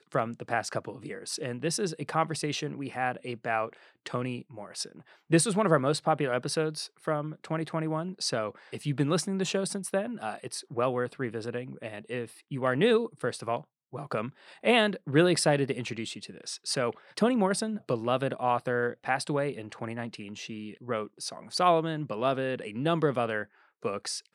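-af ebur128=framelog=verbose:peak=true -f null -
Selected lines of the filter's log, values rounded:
Integrated loudness:
  I:         -30.0 LUFS
  Threshold: -40.2 LUFS
Loudness range:
  LRA:         4.4 LU
  Threshold: -50.1 LUFS
  LRA low:   -32.3 LUFS
  LRA high:  -28.0 LUFS
True peak:
  Peak:       -7.7 dBFS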